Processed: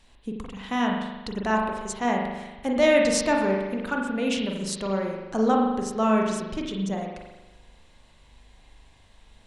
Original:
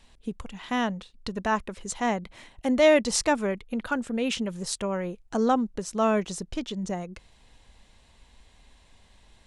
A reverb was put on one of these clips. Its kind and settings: spring tank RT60 1.1 s, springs 41 ms, chirp 20 ms, DRR 0 dB; gain -1 dB

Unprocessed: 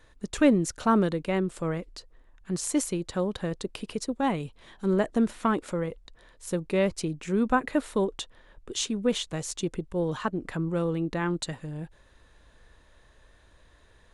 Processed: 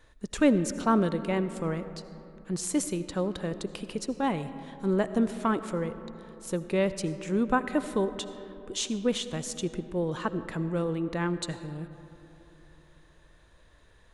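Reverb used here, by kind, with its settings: digital reverb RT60 3.4 s, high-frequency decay 0.35×, pre-delay 40 ms, DRR 12 dB; gain -1.5 dB

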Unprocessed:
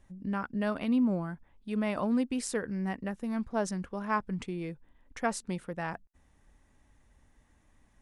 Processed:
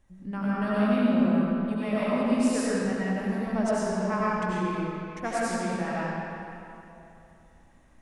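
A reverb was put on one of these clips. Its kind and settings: digital reverb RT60 2.9 s, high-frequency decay 0.75×, pre-delay 55 ms, DRR -9 dB; gain -3.5 dB

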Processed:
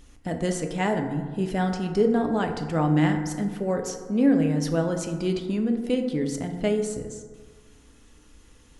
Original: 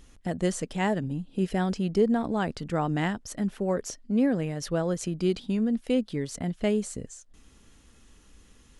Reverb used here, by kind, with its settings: FDN reverb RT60 1.6 s, low-frequency decay 0.9×, high-frequency decay 0.35×, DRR 4 dB; gain +1 dB

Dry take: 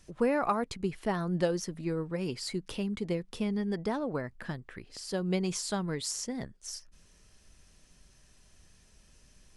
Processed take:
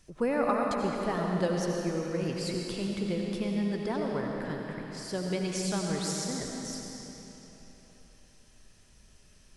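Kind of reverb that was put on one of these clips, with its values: digital reverb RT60 3.6 s, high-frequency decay 0.9×, pre-delay 50 ms, DRR -0.5 dB; gain -1.5 dB

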